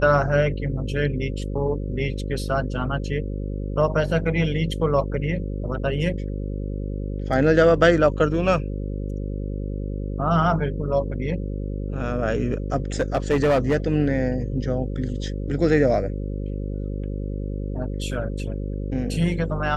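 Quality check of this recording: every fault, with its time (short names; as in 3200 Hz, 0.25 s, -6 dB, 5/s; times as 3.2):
buzz 50 Hz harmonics 11 -28 dBFS
13–13.76 clipped -14.5 dBFS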